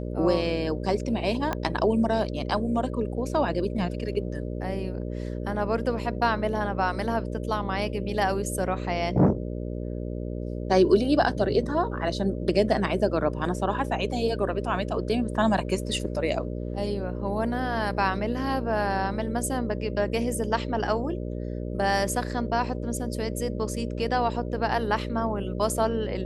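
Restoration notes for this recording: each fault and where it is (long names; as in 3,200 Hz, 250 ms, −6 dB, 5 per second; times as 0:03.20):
mains buzz 60 Hz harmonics 10 −32 dBFS
0:01.53: click −13 dBFS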